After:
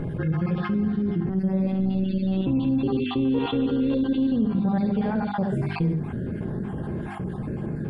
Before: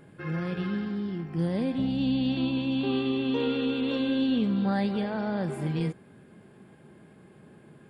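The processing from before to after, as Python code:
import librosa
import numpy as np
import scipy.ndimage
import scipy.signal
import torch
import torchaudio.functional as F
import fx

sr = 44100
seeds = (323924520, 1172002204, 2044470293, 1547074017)

y = fx.spec_dropout(x, sr, seeds[0], share_pct=36)
y = fx.tilt_eq(y, sr, slope=-4.0)
y = fx.hum_notches(y, sr, base_hz=50, count=8)
y = y + 10.0 ** (-9.5 / 20.0) * np.pad(y, (int(71 * sr / 1000.0), 0))[:len(y)]
y = fx.robotise(y, sr, hz=190.0, at=(1.29, 2.47))
y = fx.env_flatten(y, sr, amount_pct=70)
y = y * librosa.db_to_amplitude(-5.5)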